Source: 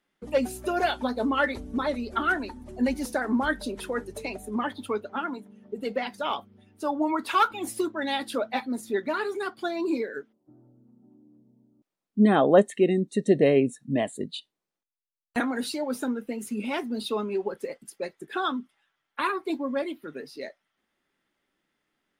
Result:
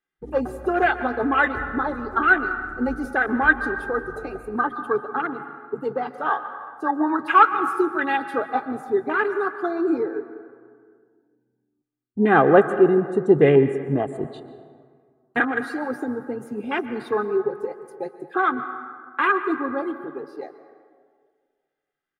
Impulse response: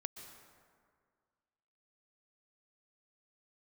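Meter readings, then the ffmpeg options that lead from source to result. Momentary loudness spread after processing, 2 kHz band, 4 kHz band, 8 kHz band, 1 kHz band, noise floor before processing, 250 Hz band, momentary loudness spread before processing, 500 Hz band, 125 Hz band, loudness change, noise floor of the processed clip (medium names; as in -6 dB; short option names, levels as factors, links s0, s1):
17 LU, +9.5 dB, no reading, under -10 dB, +7.5 dB, under -85 dBFS, +2.5 dB, 14 LU, +5.0 dB, +4.5 dB, +5.5 dB, -77 dBFS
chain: -filter_complex "[0:a]afwtdn=0.0251,equalizer=f=150:w=2.9:g=9.5,aecho=1:1:2.5:0.55,asplit=2[s0][s1];[s1]equalizer=f=1500:w=1.2:g=14[s2];[1:a]atrim=start_sample=2205[s3];[s2][s3]afir=irnorm=-1:irlink=0,volume=0.944[s4];[s0][s4]amix=inputs=2:normalize=0,volume=0.794"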